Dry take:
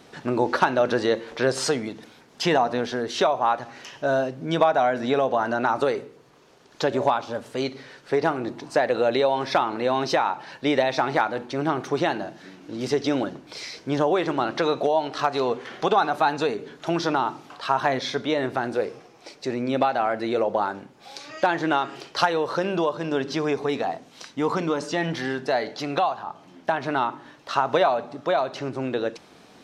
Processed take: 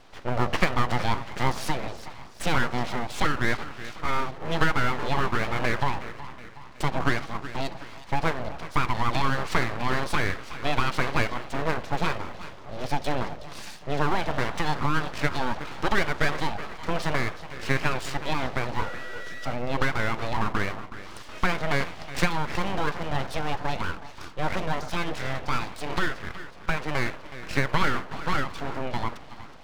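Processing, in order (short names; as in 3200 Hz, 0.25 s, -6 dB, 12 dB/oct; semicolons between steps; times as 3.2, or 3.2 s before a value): air absorption 120 m; split-band echo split 350 Hz, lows 0.163 s, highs 0.37 s, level -13.5 dB; 18.78–19.52 whine 970 Hz -31 dBFS; full-wave rectifier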